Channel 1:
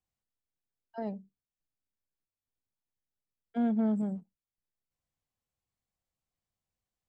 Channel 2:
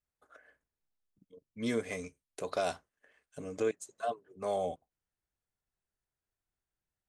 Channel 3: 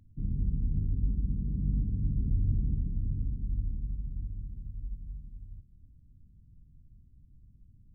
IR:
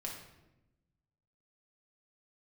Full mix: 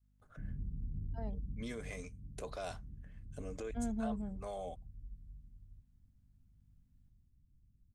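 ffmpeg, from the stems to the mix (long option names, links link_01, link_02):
-filter_complex "[0:a]adelay=200,volume=-8dB[link_01];[1:a]aeval=exprs='val(0)+0.000447*(sin(2*PI*50*n/s)+sin(2*PI*2*50*n/s)/2+sin(2*PI*3*50*n/s)/3+sin(2*PI*4*50*n/s)/4+sin(2*PI*5*50*n/s)/5)':channel_layout=same,volume=-3.5dB[link_02];[2:a]adelay=200,volume=-1.5dB,afade=type=out:start_time=1.47:duration=0.53:silence=0.316228,afade=type=in:start_time=3.21:duration=0.6:silence=0.354813[link_03];[link_02][link_03]amix=inputs=2:normalize=0,alimiter=level_in=8.5dB:limit=-24dB:level=0:latency=1:release=33,volume=-8.5dB,volume=0dB[link_04];[link_01][link_04]amix=inputs=2:normalize=0,adynamicequalizer=threshold=0.00282:dfrequency=340:dqfactor=0.84:tfrequency=340:tqfactor=0.84:attack=5:release=100:ratio=0.375:range=2:mode=cutabove:tftype=bell"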